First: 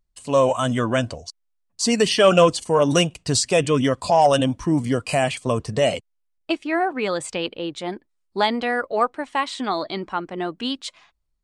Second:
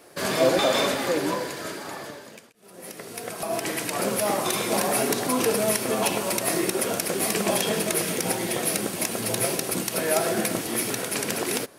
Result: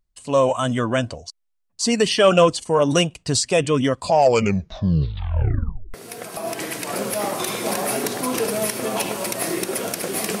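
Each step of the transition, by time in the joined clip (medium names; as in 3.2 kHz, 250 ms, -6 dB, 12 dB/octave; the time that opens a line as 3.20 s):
first
4.06 s: tape stop 1.88 s
5.94 s: go over to second from 3.00 s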